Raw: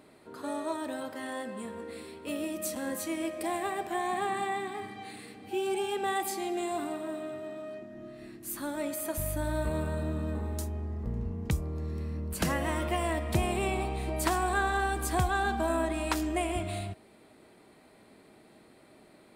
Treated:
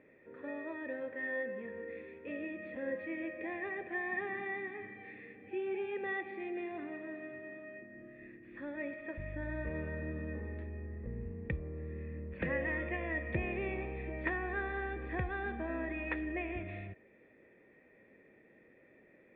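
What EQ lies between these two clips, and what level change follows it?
formant resonators in series e
parametric band 600 Hz −12 dB 0.92 octaves
+12.0 dB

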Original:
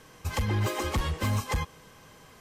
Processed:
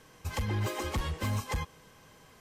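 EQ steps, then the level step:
notch filter 1,200 Hz, Q 22
−4.0 dB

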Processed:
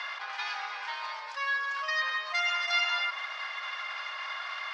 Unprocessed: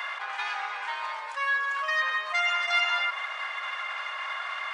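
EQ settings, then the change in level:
low-pass with resonance 5,100 Hz, resonance Q 3.1
parametric band 310 Hz −7 dB 0.22 octaves
−4.5 dB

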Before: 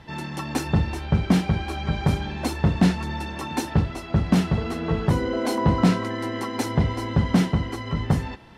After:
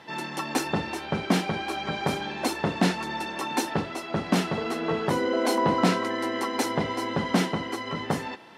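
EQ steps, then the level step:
high-pass filter 300 Hz 12 dB per octave
+2.0 dB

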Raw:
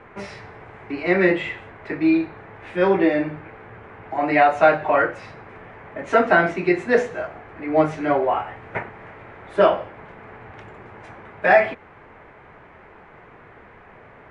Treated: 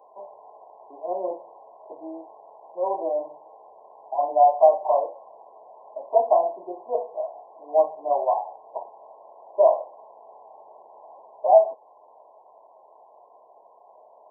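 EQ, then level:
high-pass with resonance 650 Hz, resonance Q 3.6
linear-phase brick-wall low-pass 1,100 Hz
spectral tilt +2 dB per octave
−8.5 dB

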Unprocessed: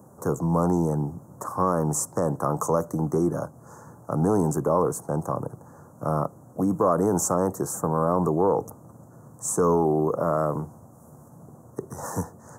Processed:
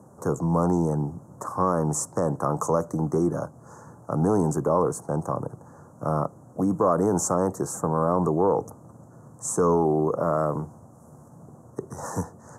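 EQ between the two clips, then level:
low-pass filter 9,600 Hz 12 dB per octave
0.0 dB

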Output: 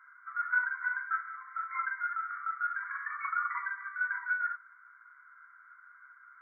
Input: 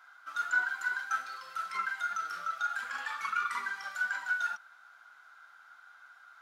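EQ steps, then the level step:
linear-phase brick-wall band-pass 950–2,300 Hz
0.0 dB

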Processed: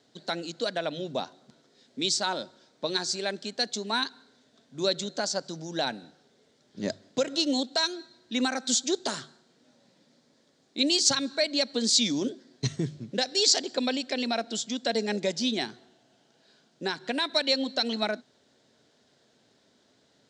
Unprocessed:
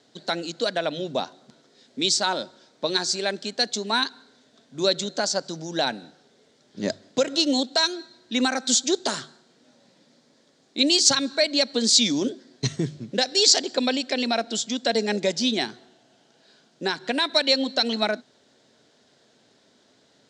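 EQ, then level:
low-shelf EQ 110 Hz +6 dB
−5.0 dB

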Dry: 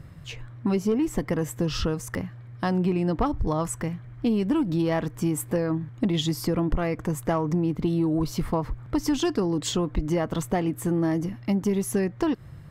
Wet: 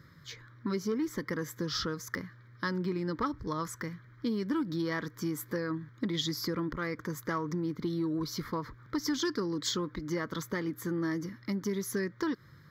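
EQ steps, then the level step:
high-pass filter 560 Hz 6 dB per octave
phaser with its sweep stopped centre 2,700 Hz, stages 6
+1.0 dB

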